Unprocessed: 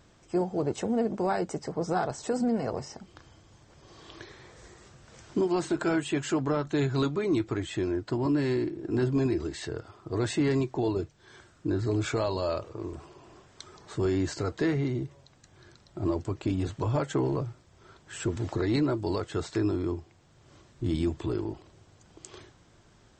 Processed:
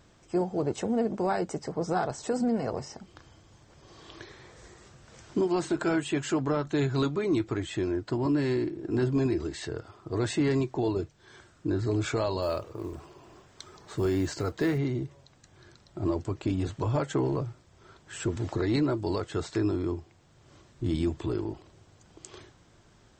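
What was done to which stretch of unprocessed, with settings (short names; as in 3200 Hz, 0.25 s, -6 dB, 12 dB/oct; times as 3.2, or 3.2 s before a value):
12.42–14.78 short-mantissa float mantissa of 4-bit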